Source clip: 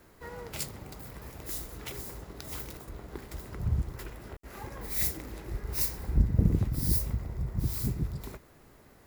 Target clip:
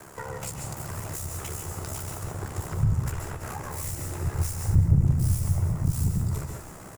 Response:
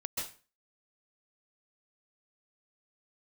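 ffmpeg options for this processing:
-filter_complex "[0:a]atempo=1.3,aeval=exprs='val(0)*sin(2*PI*34*n/s)':c=same,asplit=2[a][b];[b]highpass=f=720:p=1,volume=29dB,asoftclip=type=tanh:threshold=-10dB[c];[a][c]amix=inputs=2:normalize=0,lowpass=f=1.7k:p=1,volume=-6dB,equalizer=f=125:t=o:w=1:g=4,equalizer=f=250:t=o:w=1:g=-10,equalizer=f=500:t=o:w=1:g=-8,equalizer=f=1k:t=o:w=1:g=-4,equalizer=f=2k:t=o:w=1:g=-9,equalizer=f=4k:t=o:w=1:g=-11,equalizer=f=8k:t=o:w=1:g=10,asplit=5[d][e][f][g][h];[e]adelay=329,afreqshift=-140,volume=-20.5dB[i];[f]adelay=658,afreqshift=-280,volume=-26.5dB[j];[g]adelay=987,afreqshift=-420,volume=-32.5dB[k];[h]adelay=1316,afreqshift=-560,volume=-38.6dB[l];[d][i][j][k][l]amix=inputs=5:normalize=0,asplit=2[m][n];[1:a]atrim=start_sample=2205[o];[n][o]afir=irnorm=-1:irlink=0,volume=-2.5dB[p];[m][p]amix=inputs=2:normalize=0,acrossover=split=150[q][r];[r]acompressor=threshold=-37dB:ratio=4[s];[q][s]amix=inputs=2:normalize=0,volume=2dB"

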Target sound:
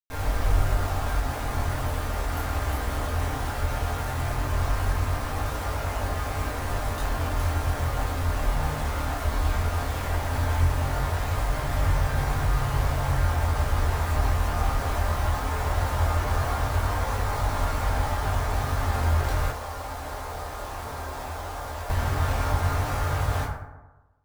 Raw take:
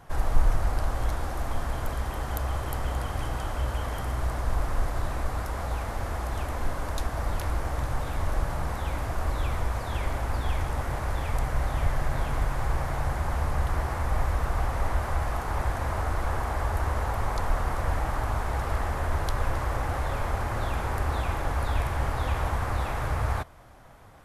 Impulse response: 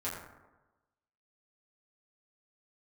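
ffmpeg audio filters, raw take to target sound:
-filter_complex "[0:a]flanger=delay=20:depth=6.9:speed=0.17,acrusher=bits=5:mix=0:aa=0.000001[a];[1:a]atrim=start_sample=2205[b];[a][b]afir=irnorm=-1:irlink=0,asettb=1/sr,asplit=3[c][d][e];[c]atrim=end=19.514[f];[d]atrim=start=19.51:end=21.9,asetpts=PTS-STARTPTS,afade=t=in:d=0.004:c=qsin,afade=t=out:st=2.386:d=0.004:c=qsin,acrossover=split=390|1200|3000[g][h][i][j];[g]acompressor=threshold=-38dB:ratio=4[k];[h]acompressor=threshold=-35dB:ratio=4[l];[i]acompressor=threshold=-48dB:ratio=4[m];[j]acompressor=threshold=-45dB:ratio=4[n];[k][l][m][n]amix=inputs=4:normalize=0[o];[e]atrim=start=21.896[p];[f][o]acrossfade=d=0.004:c1=hsin:c2=qsin[q];[q][p]acrossfade=d=0.004:c1=qsin:c2=hsin"

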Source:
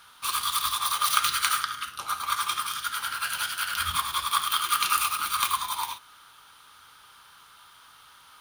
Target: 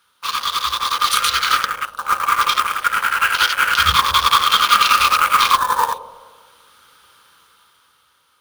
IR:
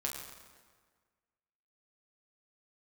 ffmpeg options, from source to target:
-filter_complex "[0:a]highpass=f=44:w=0.5412,highpass=f=44:w=1.3066,afwtdn=0.0224,lowshelf=f=140:g=-7,dynaudnorm=f=260:g=11:m=16dB,acrusher=bits=3:mode=log:mix=0:aa=0.000001,asplit=2[a][b];[b]lowpass=f=540:t=q:w=4.9[c];[1:a]atrim=start_sample=2205,lowshelf=f=170:g=8[d];[c][d]afir=irnorm=-1:irlink=0,volume=-9.5dB[e];[a][e]amix=inputs=2:normalize=0,alimiter=level_in=9dB:limit=-1dB:release=50:level=0:latency=1,volume=-1dB"

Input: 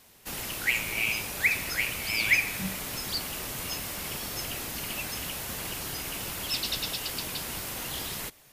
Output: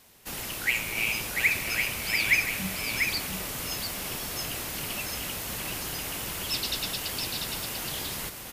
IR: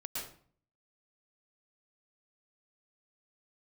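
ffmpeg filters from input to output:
-af "aecho=1:1:693:0.562"

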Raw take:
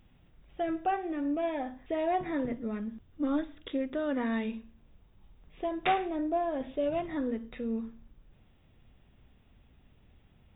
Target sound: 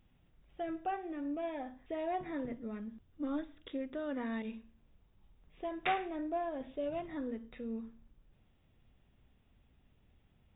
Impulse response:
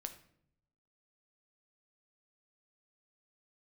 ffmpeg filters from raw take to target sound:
-filter_complex "[0:a]asettb=1/sr,asplit=3[a][b][c];[a]atrim=end=4.424[d];[b]atrim=start=4.42:end=6.49,asetpts=PTS-STARTPTS,afade=t=in:d=0.004:c=qsin,afade=t=out:st=2.066:d=0.004:c=qsin,adynamicequalizer=threshold=0.00501:dfrequency=1900:dqfactor=0.83:tfrequency=1900:tqfactor=0.83:attack=5:release=100:ratio=0.375:range=2.5:mode=boostabove:tftype=bell[e];[c]atrim=start=6.486[f];[d][e]acrossfade=d=0.004:c1=hsin:c2=qsin[g];[g][f]acrossfade=d=0.004:c1=qsin:c2=hsin,volume=-7dB"

